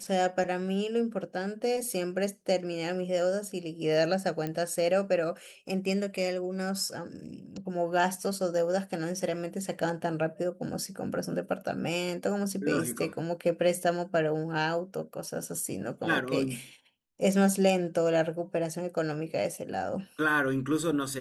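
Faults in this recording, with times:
4.47 s: pop -20 dBFS

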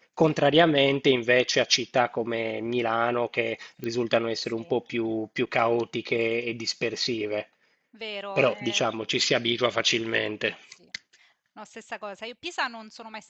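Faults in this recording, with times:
3.84 s: pop -20 dBFS

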